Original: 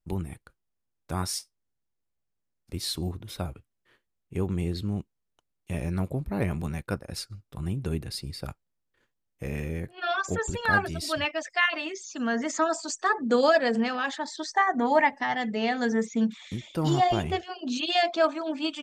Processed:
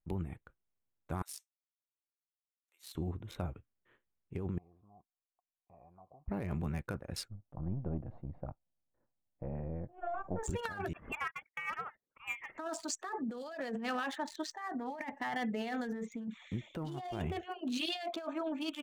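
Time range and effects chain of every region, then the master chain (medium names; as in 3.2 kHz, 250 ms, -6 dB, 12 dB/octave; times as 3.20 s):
1.22–2.95 s: ladder high-pass 580 Hz, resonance 25% + differentiator
4.58–6.28 s: compression, threshold -29 dBFS + cascade formant filter a
7.28–10.43 s: partial rectifier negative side -7 dB + resonant low-pass 710 Hz, resonance Q 1.6 + peaking EQ 420 Hz -11.5 dB 0.33 oct
10.93–12.58 s: gate -35 dBFS, range -30 dB + high-pass 1.4 kHz 24 dB/octave + frequency inversion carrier 4 kHz
whole clip: local Wiener filter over 9 samples; treble shelf 9.1 kHz +4 dB; compressor with a negative ratio -30 dBFS, ratio -1; trim -7.5 dB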